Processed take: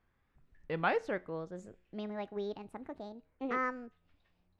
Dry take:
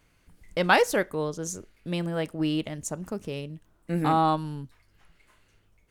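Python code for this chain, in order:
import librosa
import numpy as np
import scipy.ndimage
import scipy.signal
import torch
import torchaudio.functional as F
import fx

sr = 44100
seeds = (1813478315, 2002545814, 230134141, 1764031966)

y = fx.speed_glide(x, sr, from_pct=73, to_pct=184)
y = scipy.signal.sosfilt(scipy.signal.butter(2, 2600.0, 'lowpass', fs=sr, output='sos'), y)
y = fx.comb_fb(y, sr, f0_hz=90.0, decay_s=0.51, harmonics='all', damping=0.0, mix_pct=30)
y = F.gain(torch.from_numpy(y), -8.0).numpy()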